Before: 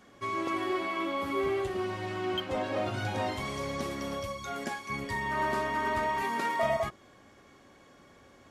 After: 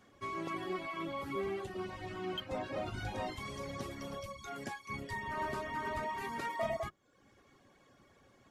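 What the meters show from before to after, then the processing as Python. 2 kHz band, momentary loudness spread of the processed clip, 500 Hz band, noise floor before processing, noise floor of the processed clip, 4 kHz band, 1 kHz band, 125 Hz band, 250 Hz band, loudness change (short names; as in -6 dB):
-8.0 dB, 6 LU, -7.5 dB, -58 dBFS, -67 dBFS, -7.0 dB, -8.0 dB, -6.0 dB, -7.5 dB, -7.5 dB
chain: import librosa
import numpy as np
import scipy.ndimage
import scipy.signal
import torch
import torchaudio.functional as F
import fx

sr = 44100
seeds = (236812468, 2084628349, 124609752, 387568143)

y = fx.octave_divider(x, sr, octaves=1, level_db=-5.0)
y = fx.dereverb_blind(y, sr, rt60_s=0.72)
y = y * librosa.db_to_amplitude(-6.0)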